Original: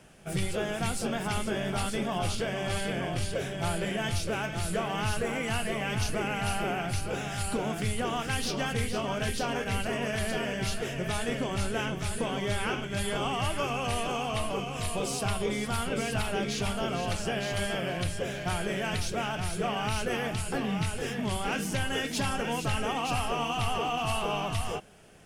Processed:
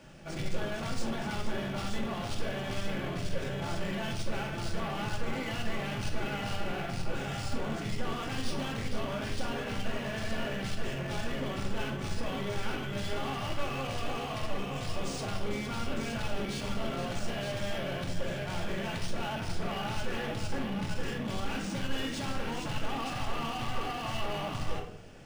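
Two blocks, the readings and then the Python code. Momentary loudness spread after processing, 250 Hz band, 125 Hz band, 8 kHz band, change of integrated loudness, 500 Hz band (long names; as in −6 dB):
1 LU, −3.0 dB, −3.5 dB, −9.0 dB, −4.5 dB, −5.0 dB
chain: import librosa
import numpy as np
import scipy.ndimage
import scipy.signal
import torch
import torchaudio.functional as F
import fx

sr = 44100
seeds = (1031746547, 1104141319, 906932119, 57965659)

y = 10.0 ** (-35.5 / 20.0) * np.tanh(x / 10.0 ** (-35.5 / 20.0))
y = fx.room_shoebox(y, sr, seeds[0], volume_m3=980.0, walls='furnished', distance_m=2.4)
y = np.interp(np.arange(len(y)), np.arange(len(y))[::3], y[::3])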